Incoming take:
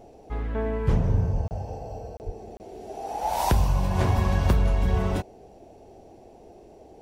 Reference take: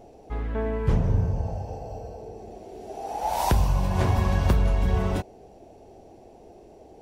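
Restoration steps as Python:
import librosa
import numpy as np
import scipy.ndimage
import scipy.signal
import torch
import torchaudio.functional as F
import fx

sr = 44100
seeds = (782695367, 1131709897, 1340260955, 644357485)

y = fx.highpass(x, sr, hz=140.0, slope=24, at=(1.32, 1.44), fade=0.02)
y = fx.highpass(y, sr, hz=140.0, slope=24, at=(2.25, 2.37), fade=0.02)
y = fx.fix_interpolate(y, sr, at_s=(1.48, 2.17, 2.57), length_ms=29.0)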